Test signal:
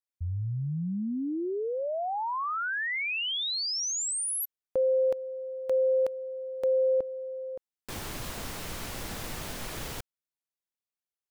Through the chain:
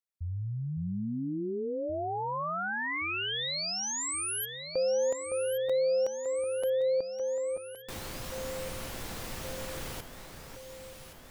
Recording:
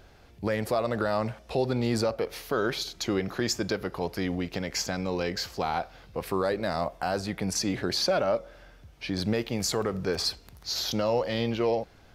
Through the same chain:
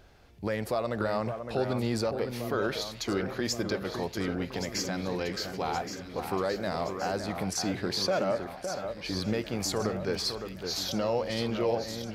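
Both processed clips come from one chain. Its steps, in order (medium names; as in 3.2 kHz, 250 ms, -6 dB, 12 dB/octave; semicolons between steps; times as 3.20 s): echo whose repeats swap between lows and highs 561 ms, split 2.1 kHz, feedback 77%, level -7 dB; trim -3 dB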